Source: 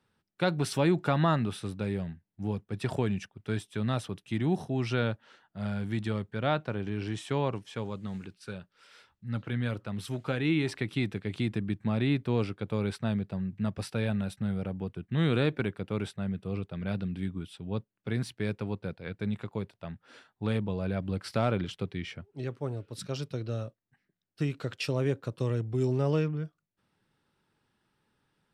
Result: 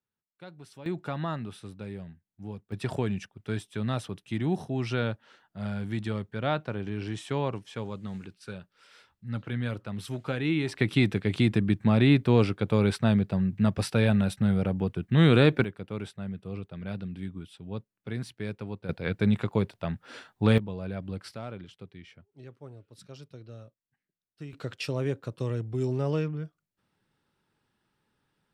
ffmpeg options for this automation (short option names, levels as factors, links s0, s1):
-af "asetnsamples=n=441:p=0,asendcmd='0.86 volume volume -7dB;2.72 volume volume 0dB;10.8 volume volume 7dB;15.64 volume volume -3dB;18.89 volume volume 8.5dB;20.58 volume volume -3.5dB;21.34 volume volume -11.5dB;24.53 volume volume -1dB',volume=0.112"